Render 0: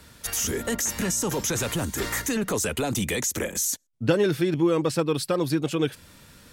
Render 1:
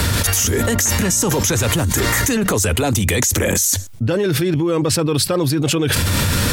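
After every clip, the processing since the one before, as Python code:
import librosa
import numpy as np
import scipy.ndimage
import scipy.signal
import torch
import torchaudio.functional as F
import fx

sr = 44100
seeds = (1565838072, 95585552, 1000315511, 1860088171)

y = fx.peak_eq(x, sr, hz=94.0, db=13.5, octaves=0.43)
y = fx.env_flatten(y, sr, amount_pct=100)
y = y * 10.0 ** (-1.0 / 20.0)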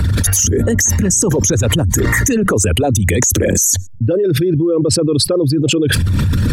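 y = fx.envelope_sharpen(x, sr, power=2.0)
y = y * 10.0 ** (3.5 / 20.0)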